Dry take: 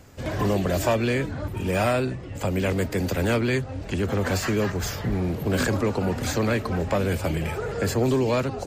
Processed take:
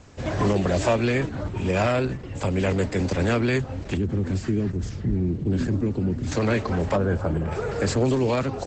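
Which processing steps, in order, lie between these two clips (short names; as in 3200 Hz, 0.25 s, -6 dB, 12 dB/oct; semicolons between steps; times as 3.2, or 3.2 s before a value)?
3.97–6.32 EQ curve 350 Hz 0 dB, 510 Hz -13 dB, 1000 Hz -17 dB, 1900 Hz -13 dB; 6.96–7.52 spectral gain 1700–9300 Hz -14 dB; gain +2 dB; Opus 12 kbps 48000 Hz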